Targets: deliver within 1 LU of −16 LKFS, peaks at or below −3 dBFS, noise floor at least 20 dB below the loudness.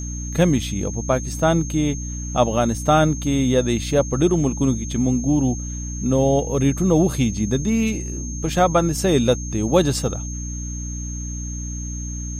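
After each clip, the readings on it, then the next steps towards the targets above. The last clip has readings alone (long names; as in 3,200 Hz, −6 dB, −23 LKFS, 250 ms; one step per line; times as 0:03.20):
mains hum 60 Hz; hum harmonics up to 300 Hz; level of the hum −27 dBFS; interfering tone 6,400 Hz; level of the tone −33 dBFS; integrated loudness −21.0 LKFS; sample peak −3.0 dBFS; target loudness −16.0 LKFS
→ mains-hum notches 60/120/180/240/300 Hz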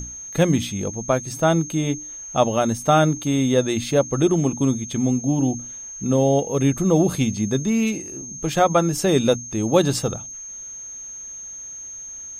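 mains hum none found; interfering tone 6,400 Hz; level of the tone −33 dBFS
→ notch filter 6,400 Hz, Q 30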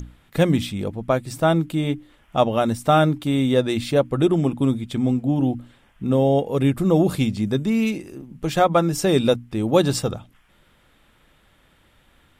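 interfering tone none found; integrated loudness −21.0 LKFS; sample peak −4.0 dBFS; target loudness −16.0 LKFS
→ level +5 dB
brickwall limiter −3 dBFS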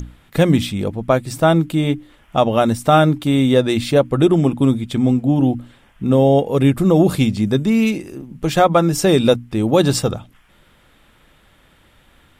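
integrated loudness −16.5 LKFS; sample peak −3.0 dBFS; background noise floor −54 dBFS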